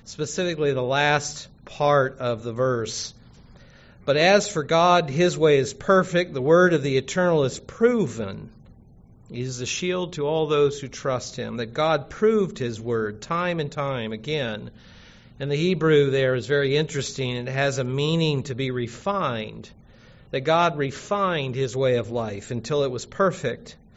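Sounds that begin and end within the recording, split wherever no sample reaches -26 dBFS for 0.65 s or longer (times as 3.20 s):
4.08–8.34 s
9.34–14.57 s
15.41–19.49 s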